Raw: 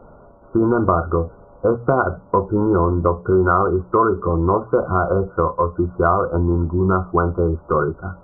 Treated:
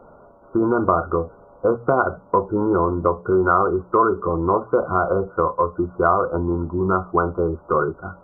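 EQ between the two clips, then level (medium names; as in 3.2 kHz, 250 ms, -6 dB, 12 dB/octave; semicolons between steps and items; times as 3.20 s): bass shelf 170 Hz -10 dB; 0.0 dB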